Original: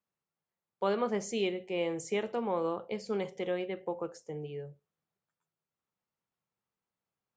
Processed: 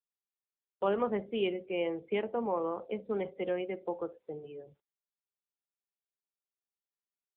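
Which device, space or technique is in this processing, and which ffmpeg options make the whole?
mobile call with aggressive noise cancelling: -af "highpass=f=180:w=0.5412,highpass=f=180:w=1.3066,afftdn=nr=27:nf=-49,volume=1.12" -ar 8000 -c:a libopencore_amrnb -b:a 7950

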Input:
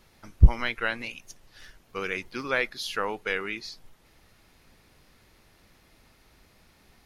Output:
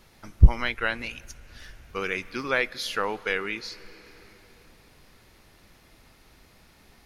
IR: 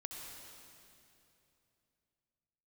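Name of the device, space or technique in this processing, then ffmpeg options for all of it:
compressed reverb return: -filter_complex "[0:a]asplit=2[s0][s1];[1:a]atrim=start_sample=2205[s2];[s1][s2]afir=irnorm=-1:irlink=0,acompressor=threshold=0.01:ratio=5,volume=0.501[s3];[s0][s3]amix=inputs=2:normalize=0,volume=1.12"

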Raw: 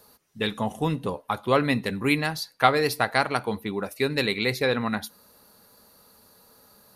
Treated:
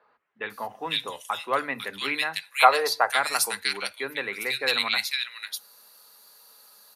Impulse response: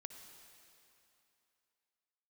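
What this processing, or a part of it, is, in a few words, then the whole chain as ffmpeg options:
filter by subtraction: -filter_complex "[0:a]asettb=1/sr,asplit=3[s0][s1][s2];[s0]atrim=end=2.534[s3];[s1]atrim=start=2.53:end=3.1,asetpts=PTS-STARTPTS,afade=t=in:d=0.004:c=qsin,afade=t=out:st=0.566:d=0.004:c=qsin,equalizer=f=125:t=o:w=1:g=-5,equalizer=f=250:t=o:w=1:g=-6,equalizer=f=500:t=o:w=1:g=7,equalizer=f=1000:t=o:w=1:g=7,equalizer=f=2000:t=o:w=1:g=-3,equalizer=f=4000:t=o:w=1:g=-7,equalizer=f=8000:t=o:w=1:g=12[s4];[s2]atrim=start=3.096[s5];[s3][s4]acrossfade=d=0.004:c1=hsin:c2=qsin[s6];[s6][s5]acrossfade=d=0.004:c1=qsin:c2=hsin,asplit=2[s7][s8];[s8]lowpass=2400,volume=-1[s9];[s7][s9]amix=inputs=2:normalize=0,acrossover=split=180|2000[s10][s11][s12];[s10]adelay=30[s13];[s12]adelay=500[s14];[s13][s11][s14]amix=inputs=3:normalize=0,volume=1.5"

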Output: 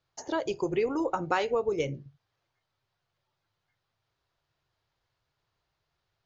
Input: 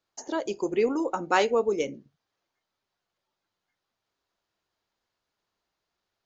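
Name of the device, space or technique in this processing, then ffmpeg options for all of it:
jukebox: -af "lowpass=5400,lowshelf=f=170:t=q:w=3:g=7,acompressor=threshold=0.0501:ratio=4,volume=1.26"

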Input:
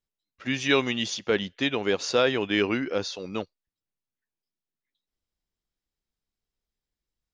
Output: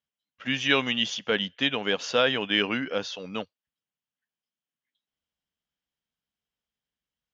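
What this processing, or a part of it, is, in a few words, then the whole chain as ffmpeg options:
car door speaker: -af "highpass=91,equalizer=f=100:t=q:w=4:g=-7,equalizer=f=360:t=q:w=4:g=-10,equalizer=f=1600:t=q:w=4:g=3,equalizer=f=3100:t=q:w=4:g=10,lowpass=f=6800:w=0.5412,lowpass=f=6800:w=1.3066,equalizer=f=4300:t=o:w=0.87:g=-5.5"

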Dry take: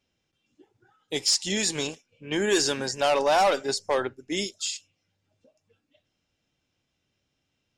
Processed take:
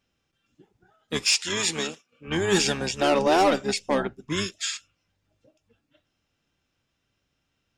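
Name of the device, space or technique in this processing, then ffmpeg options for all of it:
octave pedal: -filter_complex "[0:a]asplit=2[s0][s1];[s1]asetrate=22050,aresample=44100,atempo=2,volume=0.631[s2];[s0][s2]amix=inputs=2:normalize=0,asettb=1/sr,asplit=3[s3][s4][s5];[s3]atrim=end=1.294[s6];[s4]atrim=start=1.29:end=2.28,asetpts=PTS-STARTPTS,afade=t=in:d=0.004:c=qsin,afade=t=out:st=0.986:d=0.004:c=qsin,highpass=180[s7];[s5]atrim=start=2.276[s8];[s6][s7]acrossfade=d=0.004:c1=hsin:c2=qsin[s9];[s9][s8]acrossfade=d=0.004:c1=qsin:c2=hsin"

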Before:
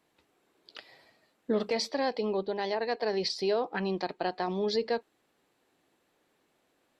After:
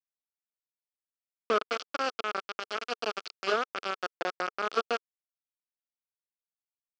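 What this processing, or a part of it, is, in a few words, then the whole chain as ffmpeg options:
hand-held game console: -af "acrusher=bits=3:mix=0:aa=0.000001,highpass=420,equalizer=f=440:t=q:w=4:g=3,equalizer=f=940:t=q:w=4:g=-9,equalizer=f=1300:t=q:w=4:g=10,equalizer=f=1900:t=q:w=4:g=-9,equalizer=f=3900:t=q:w=4:g=-8,lowpass=f=4600:w=0.5412,lowpass=f=4600:w=1.3066"

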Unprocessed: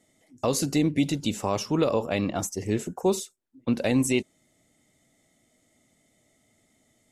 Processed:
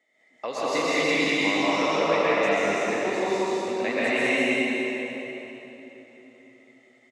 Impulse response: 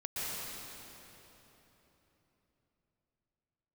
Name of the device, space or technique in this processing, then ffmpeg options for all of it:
station announcement: -filter_complex "[0:a]asettb=1/sr,asplit=3[s0][s1][s2];[s0]atrim=end=0.704[s3];[s1]atrim=start=0.7:end=1.17,asetpts=PTS-STARTPTS,afade=t=in:d=0.004:c=qsin,afade=t=out:st=0.466:d=0.004:c=qsin,highshelf=f=3200:g=10[s4];[s2]atrim=start=1.166[s5];[s3][s4]acrossfade=d=0.004:c1=hsin:c2=qsin[s6];[s6][s5]acrossfade=d=0.004:c1=qsin:c2=hsin,highpass=470,lowpass=3800,equalizer=f=2000:t=o:w=0.56:g=9.5,aecho=1:1:81.63|198.3:0.316|0.794[s7];[1:a]atrim=start_sample=2205[s8];[s7][s8]afir=irnorm=-1:irlink=0"

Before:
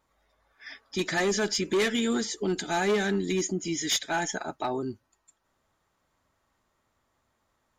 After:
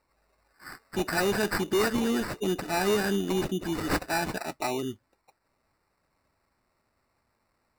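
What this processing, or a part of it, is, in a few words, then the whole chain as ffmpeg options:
crushed at another speed: -af "asetrate=35280,aresample=44100,acrusher=samples=17:mix=1:aa=0.000001,asetrate=55125,aresample=44100"

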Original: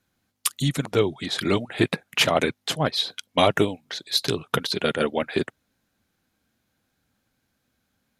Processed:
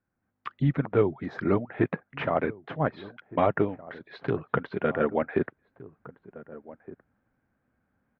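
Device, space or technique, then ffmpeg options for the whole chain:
action camera in a waterproof case: -filter_complex "[0:a]asettb=1/sr,asplit=3[s0][s1][s2];[s0]atrim=end=1.184[s3];[s1]atrim=start=1.18:end=1.6,asetpts=PTS-STARTPTS,afade=t=in:d=0.004:c=qsin,afade=t=out:st=0.416:d=0.004:c=qsin,highshelf=f=4300:t=q:w=3:g=10[s4];[s2]atrim=start=1.596[s5];[s3][s4]acrossfade=d=0.004:c1=hsin:c2=qsin[s6];[s6][s5]acrossfade=d=0.004:c1=qsin:c2=hsin,lowpass=f=1800:w=0.5412,lowpass=f=1800:w=1.3066,asplit=2[s7][s8];[s8]adelay=1516,volume=0.112,highshelf=f=4000:g=-34.1[s9];[s7][s9]amix=inputs=2:normalize=0,dynaudnorm=f=190:g=3:m=2.66,volume=0.398" -ar 32000 -c:a aac -b:a 64k

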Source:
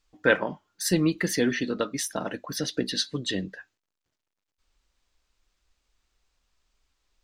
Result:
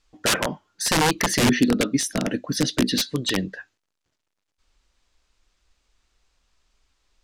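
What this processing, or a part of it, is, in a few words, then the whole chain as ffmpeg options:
overflowing digital effects unit: -filter_complex "[0:a]aeval=exprs='(mod(8.41*val(0)+1,2)-1)/8.41':c=same,lowpass=11000,asettb=1/sr,asplit=3[s0][s1][s2];[s0]atrim=end=1.374[s3];[s1]atrim=start=1.37:end=3.06,asetpts=PTS-STARTPTS,afade=t=in:d=0.004:c=qsin,afade=t=out:st=1.686:d=0.004:c=qsin,equalizer=f=125:t=o:w=1:g=3,equalizer=f=250:t=o:w=1:g=7,equalizer=f=1000:t=o:w=1:g=-8[s4];[s2]atrim=start=3.056[s5];[s3][s4]acrossfade=d=0.004:c1=hsin:c2=qsin[s6];[s6][s5]acrossfade=d=0.004:c1=qsin:c2=hsin,volume=1.88"

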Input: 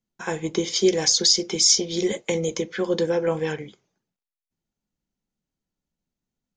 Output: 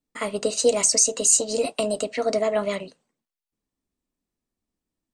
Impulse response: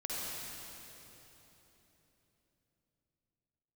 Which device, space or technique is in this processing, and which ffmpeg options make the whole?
nightcore: -af "asetrate=56448,aresample=44100"

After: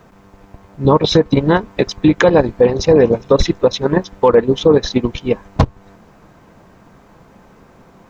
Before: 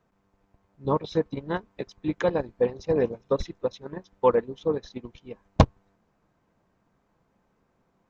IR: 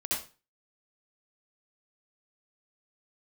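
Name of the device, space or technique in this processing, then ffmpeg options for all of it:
loud club master: -af "acompressor=threshold=0.0501:ratio=2.5,asoftclip=type=hard:threshold=0.158,alimiter=level_in=17.8:limit=0.891:release=50:level=0:latency=1,volume=0.891"

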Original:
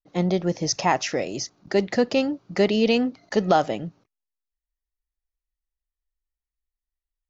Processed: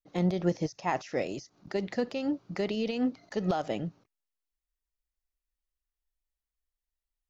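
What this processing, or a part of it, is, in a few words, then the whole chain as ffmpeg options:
de-esser from a sidechain: -filter_complex "[0:a]asplit=2[s0][s1];[s1]highpass=f=4800:w=0.5412,highpass=f=4800:w=1.3066,apad=whole_len=321824[s2];[s0][s2]sidechaincompress=threshold=0.00447:ratio=4:attack=0.61:release=84,volume=0.794"

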